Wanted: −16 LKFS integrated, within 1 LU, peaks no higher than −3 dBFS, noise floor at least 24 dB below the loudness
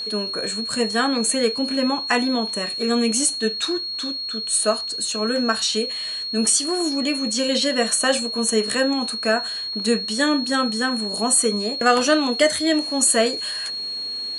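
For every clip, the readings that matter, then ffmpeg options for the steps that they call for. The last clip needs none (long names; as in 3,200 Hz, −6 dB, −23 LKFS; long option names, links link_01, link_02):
interfering tone 4,300 Hz; level of the tone −26 dBFS; integrated loudness −20.5 LKFS; sample peak −3.5 dBFS; target loudness −16.0 LKFS
→ -af "bandreject=frequency=4300:width=30"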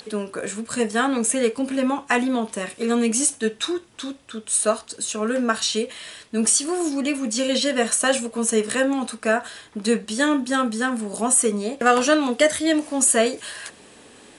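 interfering tone none found; integrated loudness −21.5 LKFS; sample peak −4.0 dBFS; target loudness −16.0 LKFS
→ -af "volume=5.5dB,alimiter=limit=-3dB:level=0:latency=1"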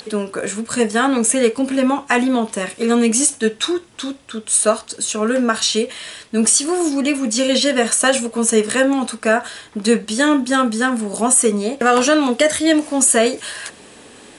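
integrated loudness −16.5 LKFS; sample peak −3.0 dBFS; background noise floor −43 dBFS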